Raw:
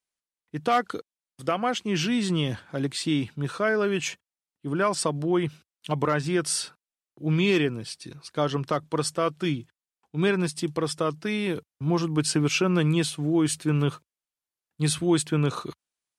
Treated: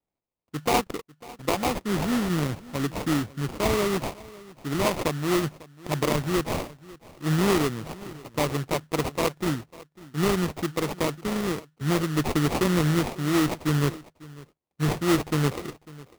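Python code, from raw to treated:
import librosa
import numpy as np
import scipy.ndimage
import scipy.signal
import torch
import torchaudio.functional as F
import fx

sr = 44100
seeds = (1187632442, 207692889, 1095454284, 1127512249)

p1 = fx.sample_hold(x, sr, seeds[0], rate_hz=1600.0, jitter_pct=20)
y = p1 + fx.echo_single(p1, sr, ms=548, db=-20.5, dry=0)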